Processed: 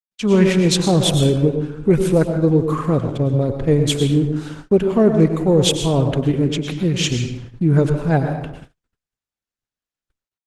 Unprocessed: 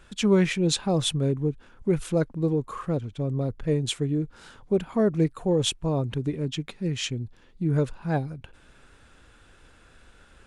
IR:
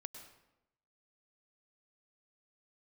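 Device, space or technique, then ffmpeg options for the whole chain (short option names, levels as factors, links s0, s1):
speakerphone in a meeting room: -filter_complex "[1:a]atrim=start_sample=2205[s0];[0:a][s0]afir=irnorm=-1:irlink=0,dynaudnorm=f=100:g=5:m=5.62,agate=range=0.00158:threshold=0.02:ratio=16:detection=peak" -ar 48000 -c:a libopus -b:a 16k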